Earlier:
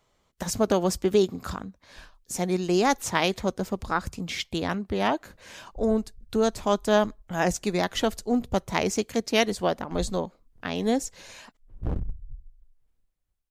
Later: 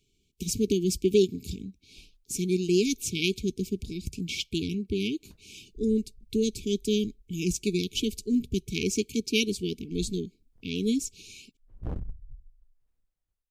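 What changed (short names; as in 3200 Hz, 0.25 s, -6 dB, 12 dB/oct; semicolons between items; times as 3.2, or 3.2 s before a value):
speech: add brick-wall FIR band-stop 450–2200 Hz; background -5.0 dB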